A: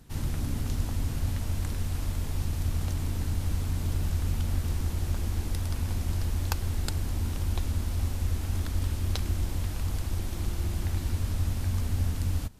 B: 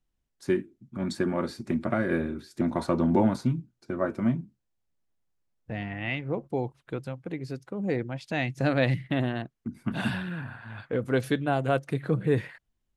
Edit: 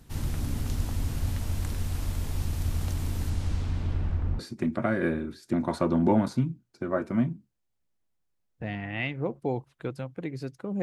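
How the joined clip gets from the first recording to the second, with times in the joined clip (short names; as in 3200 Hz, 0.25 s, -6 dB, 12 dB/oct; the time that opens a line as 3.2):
A
3.29–4.39 LPF 10000 Hz -> 1100 Hz
4.39 switch to B from 1.47 s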